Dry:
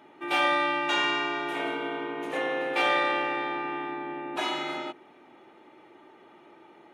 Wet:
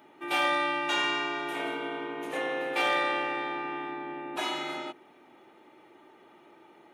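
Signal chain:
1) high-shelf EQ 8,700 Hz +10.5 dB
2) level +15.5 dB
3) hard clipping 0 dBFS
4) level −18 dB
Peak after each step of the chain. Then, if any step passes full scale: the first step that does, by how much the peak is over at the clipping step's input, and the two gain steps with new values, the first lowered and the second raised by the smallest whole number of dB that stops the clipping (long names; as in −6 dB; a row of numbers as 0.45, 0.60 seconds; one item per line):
−12.0, +3.5, 0.0, −18.0 dBFS
step 2, 3.5 dB
step 2 +11.5 dB, step 4 −14 dB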